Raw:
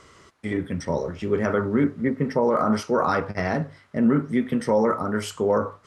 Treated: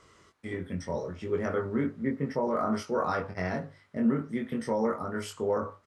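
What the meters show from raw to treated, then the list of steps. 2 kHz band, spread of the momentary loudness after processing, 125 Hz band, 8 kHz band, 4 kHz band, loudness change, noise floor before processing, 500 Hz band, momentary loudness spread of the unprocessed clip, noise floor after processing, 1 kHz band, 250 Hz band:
-7.5 dB, 8 LU, -7.5 dB, -7.0 dB, -7.5 dB, -7.5 dB, -55 dBFS, -7.5 dB, 7 LU, -62 dBFS, -7.5 dB, -7.5 dB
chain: doubling 22 ms -3.5 dB; trim -9 dB

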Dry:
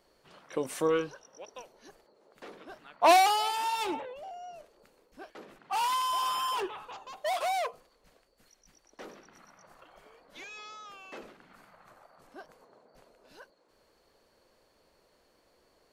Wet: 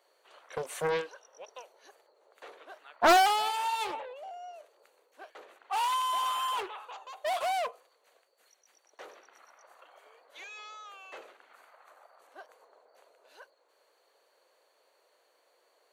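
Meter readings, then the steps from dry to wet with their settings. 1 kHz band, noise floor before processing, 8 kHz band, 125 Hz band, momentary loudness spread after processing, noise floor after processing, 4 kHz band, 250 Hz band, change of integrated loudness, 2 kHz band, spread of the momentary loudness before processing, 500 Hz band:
-0.5 dB, -68 dBFS, -1.5 dB, no reading, 25 LU, -70 dBFS, -0.5 dB, -2.5 dB, -0.5 dB, +2.0 dB, 25 LU, -2.0 dB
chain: high-pass 450 Hz 24 dB/octave; band-stop 5.2 kHz, Q 5; loudspeaker Doppler distortion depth 0.37 ms

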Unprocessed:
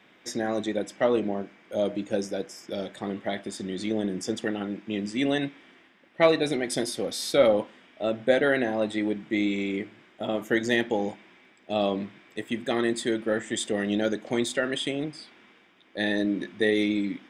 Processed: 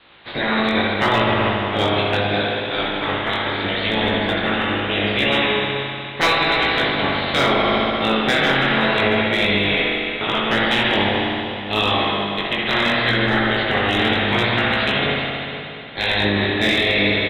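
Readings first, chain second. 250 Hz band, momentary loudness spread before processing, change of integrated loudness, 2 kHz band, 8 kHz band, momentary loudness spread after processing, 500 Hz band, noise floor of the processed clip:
+5.0 dB, 12 LU, +9.0 dB, +14.5 dB, -5.0 dB, 5 LU, +4.5 dB, -30 dBFS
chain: spectral peaks clipped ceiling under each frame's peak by 26 dB; steep low-pass 4.1 kHz 96 dB/octave; in parallel at -2 dB: compression 12:1, threshold -32 dBFS, peak gain reduction 18.5 dB; on the sum: doubling 14 ms -12 dB; overload inside the chain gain 13 dB; spring tank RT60 2.9 s, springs 59 ms, chirp 20 ms, DRR -3.5 dB; chorus 0.75 Hz, delay 17.5 ms, depth 5.2 ms; peak limiter -14 dBFS, peak gain reduction 5 dB; trim +6 dB

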